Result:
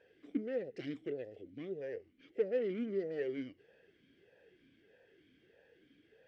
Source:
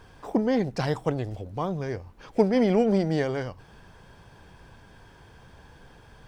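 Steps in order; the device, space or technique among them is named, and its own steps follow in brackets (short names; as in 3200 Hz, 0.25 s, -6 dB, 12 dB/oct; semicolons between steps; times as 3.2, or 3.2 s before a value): talk box (tube stage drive 23 dB, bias 0.45; vowel sweep e-i 1.6 Hz); gain +1.5 dB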